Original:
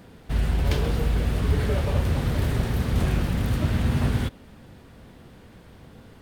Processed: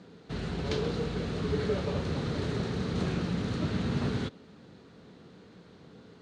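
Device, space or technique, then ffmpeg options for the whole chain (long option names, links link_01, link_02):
car door speaker: -af "highpass=110,equalizer=frequency=180:width_type=q:width=4:gain=7,equalizer=frequency=300:width_type=q:width=4:gain=4,equalizer=frequency=430:width_type=q:width=4:gain=8,equalizer=frequency=1300:width_type=q:width=4:gain=4,equalizer=frequency=4100:width_type=q:width=4:gain=8,equalizer=frequency=6400:width_type=q:width=4:gain=3,lowpass=frequency=7300:width=0.5412,lowpass=frequency=7300:width=1.3066,volume=-7dB"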